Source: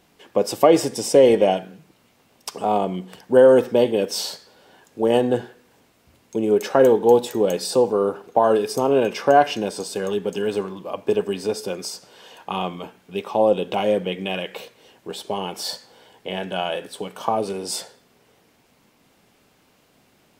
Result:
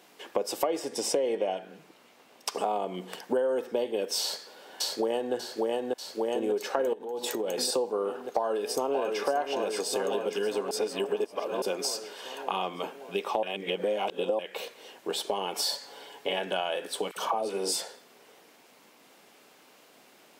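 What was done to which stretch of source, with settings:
0.79–2.55 s: treble shelf 6 kHz -6 dB
4.21–5.34 s: echo throw 590 ms, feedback 65%, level -3 dB
6.93–7.58 s: compression 12:1, threshold -27 dBFS
8.23–9.22 s: echo throw 580 ms, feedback 60%, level -5.5 dB
10.71–11.62 s: reverse
13.43–14.39 s: reverse
15.55–16.40 s: comb 7.1 ms
17.11–17.79 s: phase dispersion lows, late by 58 ms, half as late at 910 Hz
whole clip: high-pass 330 Hz 12 dB/octave; compression 6:1, threshold -30 dBFS; trim +3.5 dB

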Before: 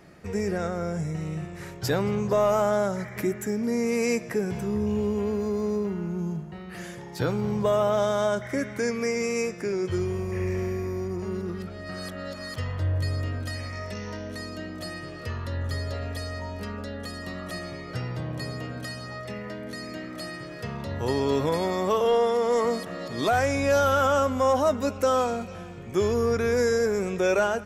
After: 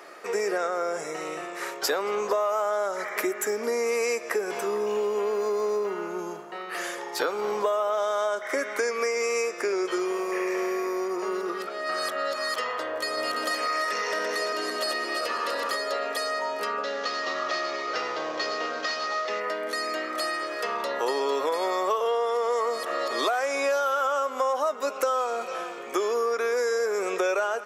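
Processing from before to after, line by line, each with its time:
10.11–11.80 s: high-pass 150 Hz
13.00–15.76 s: backward echo that repeats 170 ms, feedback 66%, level -3 dB
16.83–19.40 s: CVSD coder 32 kbps
whole clip: high-pass 400 Hz 24 dB/octave; peaking EQ 1.2 kHz +7 dB 0.36 oct; compression 6:1, threshold -32 dBFS; trim +8.5 dB

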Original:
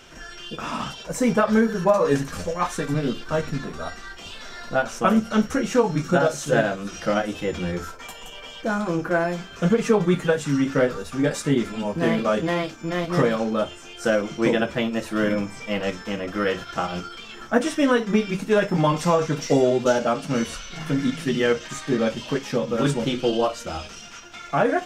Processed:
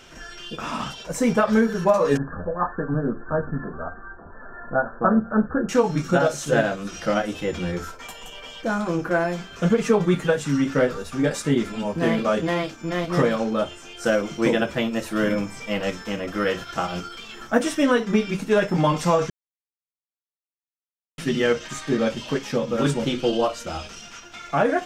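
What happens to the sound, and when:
2.17–5.69 s: brick-wall FIR low-pass 1.8 kHz
14.06–17.83 s: treble shelf 9.7 kHz +6.5 dB
19.30–21.18 s: mute

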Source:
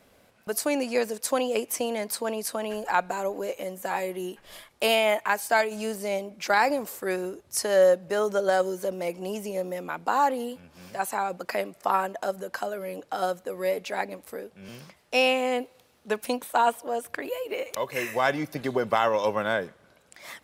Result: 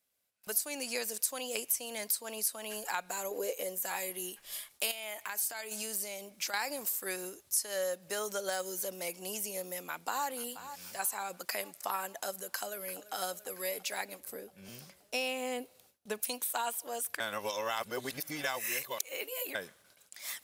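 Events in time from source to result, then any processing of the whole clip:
3.31–3.78 s: peaking EQ 460 Hz +13.5 dB 0.58 oct
4.91–6.54 s: compression 4:1, threshold -30 dBFS
9.68–10.27 s: echo throw 480 ms, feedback 50%, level -15.5 dB
12.53–13.14 s: echo throw 340 ms, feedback 75%, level -16 dB
14.20–16.23 s: tilt shelf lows +5.5 dB, about 770 Hz
17.20–19.55 s: reverse
whole clip: gate with hold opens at -46 dBFS; pre-emphasis filter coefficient 0.9; compression 3:1, threshold -39 dBFS; trim +7.5 dB

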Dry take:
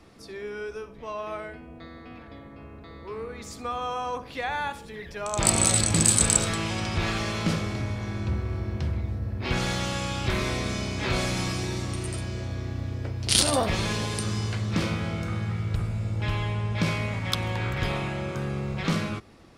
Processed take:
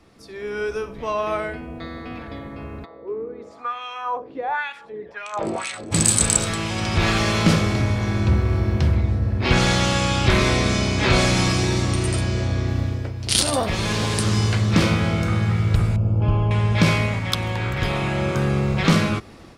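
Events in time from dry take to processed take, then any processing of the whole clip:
2.84–5.91 s: LFO band-pass sine 0.53 Hz -> 3 Hz 340–2500 Hz
8.95–12.68 s: low-pass 9.8 kHz
13.92–14.34 s: loudspeaker Doppler distortion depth 0.21 ms
15.96–16.51 s: boxcar filter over 23 samples
whole clip: level rider gain up to 11 dB; trim -1 dB

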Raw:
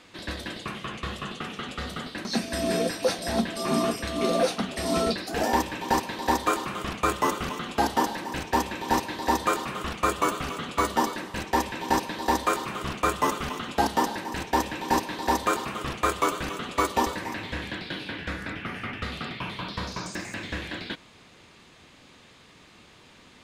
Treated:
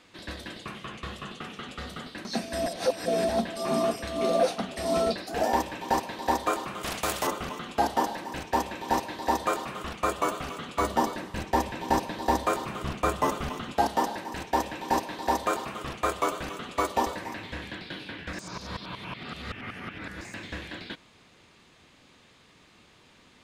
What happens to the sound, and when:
2.66–3.29 s: reverse
6.83–7.27 s: spectrum-flattening compressor 2:1
10.81–13.74 s: bass shelf 230 Hz +7.5 dB
18.33–20.21 s: reverse
whole clip: dynamic bell 660 Hz, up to +7 dB, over -40 dBFS, Q 1.9; trim -4.5 dB

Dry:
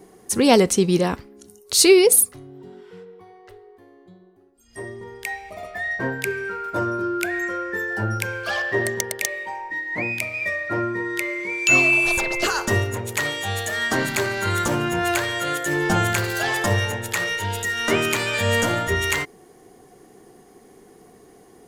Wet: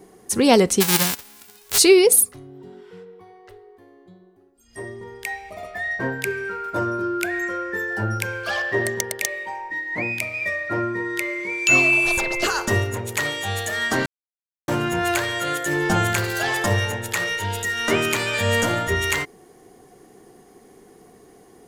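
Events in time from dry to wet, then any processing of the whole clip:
0.80–1.77 s: formants flattened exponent 0.1
14.06–14.68 s: mute

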